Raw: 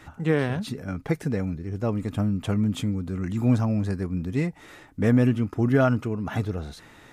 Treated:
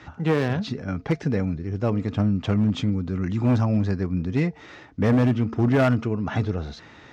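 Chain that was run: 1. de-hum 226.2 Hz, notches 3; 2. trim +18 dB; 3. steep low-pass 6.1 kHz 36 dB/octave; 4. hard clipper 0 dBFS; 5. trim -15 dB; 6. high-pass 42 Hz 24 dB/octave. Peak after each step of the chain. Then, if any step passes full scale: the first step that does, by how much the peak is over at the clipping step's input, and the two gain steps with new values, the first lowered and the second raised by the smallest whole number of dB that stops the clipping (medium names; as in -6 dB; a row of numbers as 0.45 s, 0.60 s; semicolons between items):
-10.0 dBFS, +8.0 dBFS, +8.0 dBFS, 0.0 dBFS, -15.0 dBFS, -9.5 dBFS; step 2, 8.0 dB; step 2 +10 dB, step 5 -7 dB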